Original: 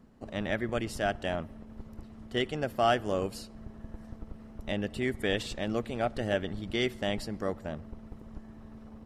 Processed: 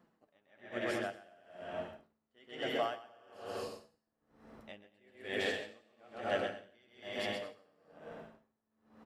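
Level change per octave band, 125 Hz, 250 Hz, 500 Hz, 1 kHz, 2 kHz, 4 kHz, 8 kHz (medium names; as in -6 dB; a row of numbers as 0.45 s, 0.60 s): -18.0 dB, -12.5 dB, -8.0 dB, -8.5 dB, -5.5 dB, -7.0 dB, -9.5 dB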